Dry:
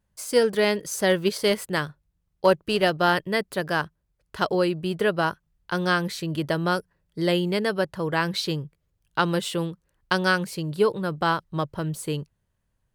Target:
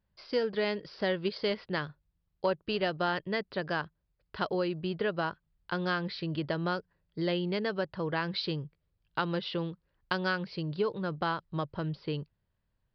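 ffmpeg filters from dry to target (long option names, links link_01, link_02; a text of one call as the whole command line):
ffmpeg -i in.wav -af "acompressor=threshold=-25dB:ratio=2,aresample=11025,aresample=44100,volume=-4.5dB" out.wav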